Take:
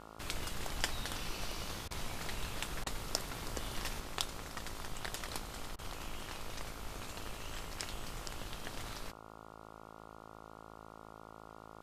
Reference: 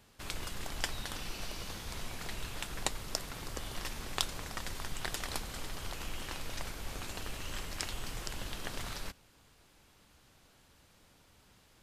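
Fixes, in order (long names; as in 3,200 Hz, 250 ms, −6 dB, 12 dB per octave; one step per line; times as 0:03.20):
hum removal 54.3 Hz, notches 26
repair the gap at 0:01.88/0:02.84/0:05.76, 26 ms
level 0 dB, from 0:04.00 +4 dB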